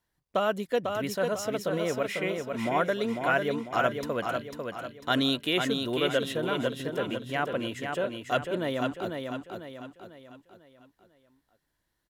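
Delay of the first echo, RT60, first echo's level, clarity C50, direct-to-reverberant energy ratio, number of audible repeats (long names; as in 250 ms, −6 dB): 497 ms, no reverb audible, −5.0 dB, no reverb audible, no reverb audible, 5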